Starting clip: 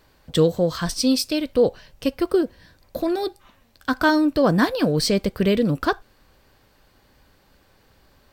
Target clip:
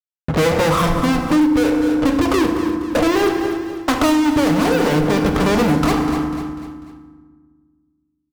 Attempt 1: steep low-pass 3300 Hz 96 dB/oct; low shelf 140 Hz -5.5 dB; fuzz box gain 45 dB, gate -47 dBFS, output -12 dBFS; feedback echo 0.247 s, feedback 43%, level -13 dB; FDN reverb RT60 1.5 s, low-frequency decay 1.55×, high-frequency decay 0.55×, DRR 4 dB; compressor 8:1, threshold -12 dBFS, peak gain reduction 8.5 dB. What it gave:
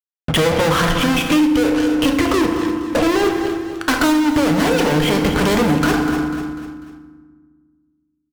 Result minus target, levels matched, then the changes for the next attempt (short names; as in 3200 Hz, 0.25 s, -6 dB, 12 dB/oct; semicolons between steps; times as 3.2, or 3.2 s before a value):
4000 Hz band +4.0 dB
change: steep low-pass 1300 Hz 96 dB/oct